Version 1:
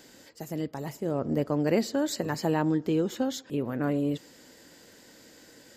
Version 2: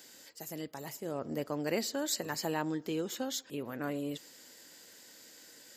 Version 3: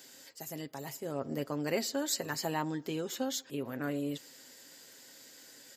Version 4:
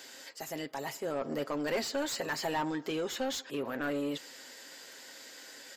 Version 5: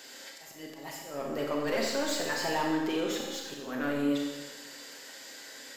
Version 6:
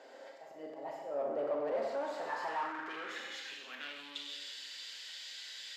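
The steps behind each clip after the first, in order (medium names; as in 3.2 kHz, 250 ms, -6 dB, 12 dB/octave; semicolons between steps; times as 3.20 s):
tilt EQ +2.5 dB/octave; trim -5 dB
comb 7.5 ms, depth 39%
overdrive pedal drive 21 dB, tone 2.7 kHz, clips at -18 dBFS; trim -4.5 dB
slow attack 230 ms; Schroeder reverb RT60 1.2 s, combs from 28 ms, DRR -0.5 dB
saturation -34 dBFS, distortion -8 dB; band-pass sweep 620 Hz -> 3.4 kHz, 1.77–4.04 s; trim +7 dB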